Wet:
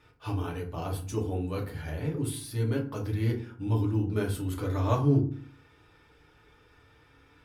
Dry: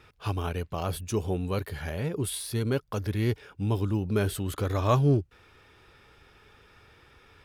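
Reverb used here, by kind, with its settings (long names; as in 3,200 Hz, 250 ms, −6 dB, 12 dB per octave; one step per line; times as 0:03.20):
feedback delay network reverb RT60 0.44 s, low-frequency decay 1.55×, high-frequency decay 0.55×, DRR −2 dB
level −8 dB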